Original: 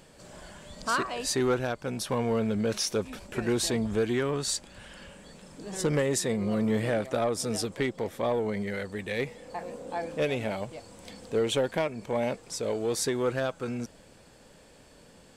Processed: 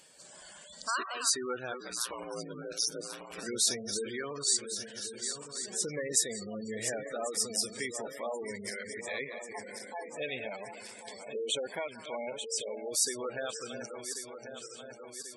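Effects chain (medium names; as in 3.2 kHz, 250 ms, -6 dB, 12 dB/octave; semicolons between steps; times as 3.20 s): backward echo that repeats 544 ms, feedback 75%, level -8.5 dB; 1.80–3.43 s: ring modulator 59 Hz; tilt EQ +3.5 dB/octave; repeats whose band climbs or falls 182 ms, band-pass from 1.2 kHz, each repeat 0.7 oct, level -10.5 dB; spectral gate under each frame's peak -15 dB strong; trim -6 dB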